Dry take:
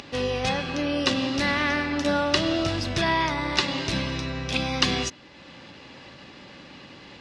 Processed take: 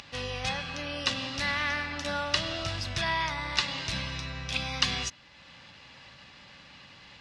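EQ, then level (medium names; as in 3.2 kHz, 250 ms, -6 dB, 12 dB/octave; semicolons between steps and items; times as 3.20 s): peaking EQ 340 Hz -14 dB 1.6 oct; -3.0 dB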